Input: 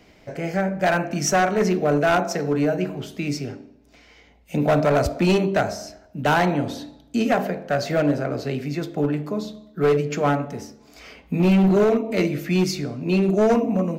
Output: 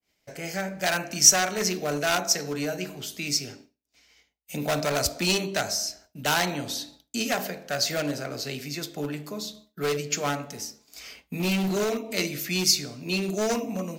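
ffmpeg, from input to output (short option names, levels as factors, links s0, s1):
-af "adynamicequalizer=threshold=0.00708:dfrequency=5000:dqfactor=0.94:tfrequency=5000:tqfactor=0.94:attack=5:release=100:ratio=0.375:range=2.5:mode=boostabove:tftype=bell,crystalizer=i=7:c=0,agate=range=0.0224:threshold=0.0178:ratio=3:detection=peak,volume=0.316"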